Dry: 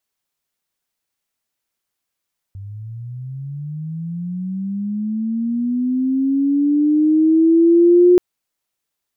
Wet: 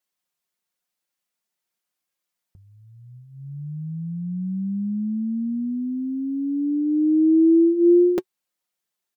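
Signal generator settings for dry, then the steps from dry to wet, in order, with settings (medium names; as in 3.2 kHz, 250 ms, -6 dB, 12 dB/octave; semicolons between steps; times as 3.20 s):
sweep linear 96 Hz -> 360 Hz -29.5 dBFS -> -6.5 dBFS 5.63 s
flange 0.95 Hz, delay 3.6 ms, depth 1.1 ms, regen -57%; bass shelf 83 Hz -9.5 dB; comb 5.6 ms, depth 43%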